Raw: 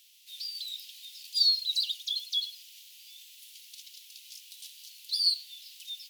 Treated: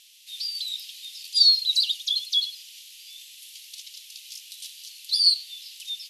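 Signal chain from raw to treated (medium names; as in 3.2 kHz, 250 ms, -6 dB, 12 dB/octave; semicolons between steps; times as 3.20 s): brick-wall FIR low-pass 13 kHz; trim +7 dB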